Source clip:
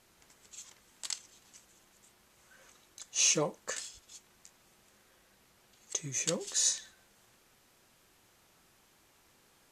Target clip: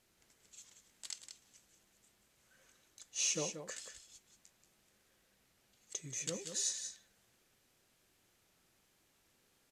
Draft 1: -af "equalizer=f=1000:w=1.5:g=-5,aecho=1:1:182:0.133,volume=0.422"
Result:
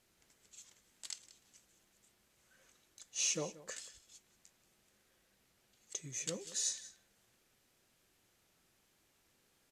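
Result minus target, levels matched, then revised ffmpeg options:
echo-to-direct -9 dB
-af "equalizer=f=1000:w=1.5:g=-5,aecho=1:1:182:0.376,volume=0.422"

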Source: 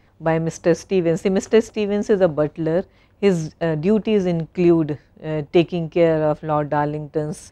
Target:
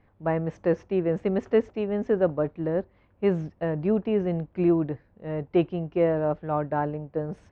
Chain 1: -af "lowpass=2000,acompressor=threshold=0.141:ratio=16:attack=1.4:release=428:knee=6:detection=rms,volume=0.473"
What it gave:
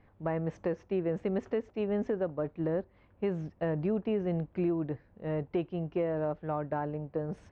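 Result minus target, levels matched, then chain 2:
compression: peak gain reduction +11.5 dB
-af "lowpass=2000,volume=0.473"

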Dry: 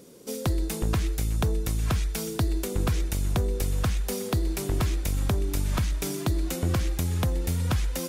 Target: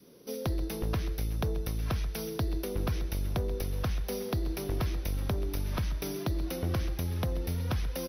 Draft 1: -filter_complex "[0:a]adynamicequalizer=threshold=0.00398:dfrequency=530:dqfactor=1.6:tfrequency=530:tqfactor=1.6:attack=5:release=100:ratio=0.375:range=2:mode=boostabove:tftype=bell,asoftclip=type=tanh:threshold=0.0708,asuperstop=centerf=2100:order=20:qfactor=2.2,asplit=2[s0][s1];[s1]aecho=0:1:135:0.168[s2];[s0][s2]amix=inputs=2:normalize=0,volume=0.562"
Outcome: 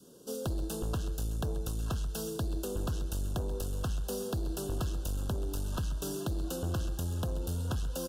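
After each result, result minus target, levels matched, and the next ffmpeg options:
saturation: distortion +12 dB; 8 kHz band +5.0 dB
-filter_complex "[0:a]adynamicequalizer=threshold=0.00398:dfrequency=530:dqfactor=1.6:tfrequency=530:tqfactor=1.6:attack=5:release=100:ratio=0.375:range=2:mode=boostabove:tftype=bell,asoftclip=type=tanh:threshold=0.178,asuperstop=centerf=2100:order=20:qfactor=2.2,asplit=2[s0][s1];[s1]aecho=0:1:135:0.168[s2];[s0][s2]amix=inputs=2:normalize=0,volume=0.562"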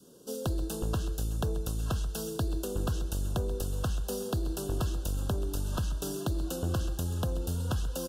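8 kHz band +4.5 dB
-filter_complex "[0:a]adynamicequalizer=threshold=0.00398:dfrequency=530:dqfactor=1.6:tfrequency=530:tqfactor=1.6:attack=5:release=100:ratio=0.375:range=2:mode=boostabove:tftype=bell,asoftclip=type=tanh:threshold=0.178,asuperstop=centerf=7900:order=20:qfactor=2.2,asplit=2[s0][s1];[s1]aecho=0:1:135:0.168[s2];[s0][s2]amix=inputs=2:normalize=0,volume=0.562"

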